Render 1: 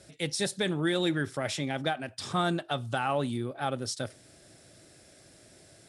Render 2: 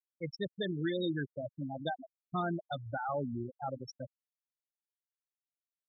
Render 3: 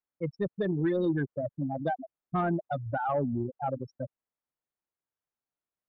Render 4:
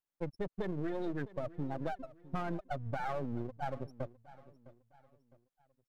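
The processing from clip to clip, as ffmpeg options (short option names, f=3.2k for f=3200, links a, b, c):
-af "afftfilt=real='re*gte(hypot(re,im),0.112)':imag='im*gte(hypot(re,im),0.112)':win_size=1024:overlap=0.75,volume=-5dB"
-af "lowpass=1.4k,asoftclip=type=tanh:threshold=-25.5dB,volume=7.5dB"
-af "aeval=exprs='if(lt(val(0),0),0.251*val(0),val(0))':c=same,acompressor=threshold=-34dB:ratio=6,aecho=1:1:658|1316|1974:0.119|0.0464|0.0181,volume=1.5dB"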